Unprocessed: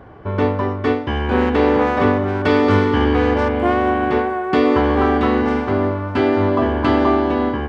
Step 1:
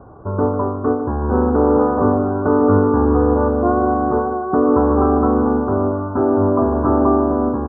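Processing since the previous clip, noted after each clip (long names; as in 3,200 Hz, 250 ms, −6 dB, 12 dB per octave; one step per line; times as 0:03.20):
Butterworth low-pass 1,400 Hz 72 dB per octave
single-tap delay 150 ms −11 dB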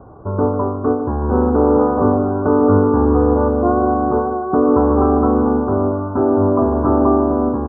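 low-pass filter 1,500 Hz 12 dB per octave
level +1 dB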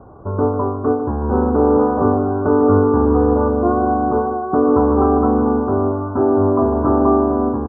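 double-tracking delay 23 ms −10 dB
level −1 dB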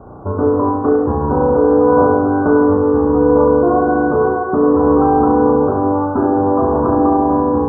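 brickwall limiter −10.5 dBFS, peak gain reduction 8.5 dB
on a send: flutter between parallel walls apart 5.9 metres, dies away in 0.88 s
on the sum: level +3 dB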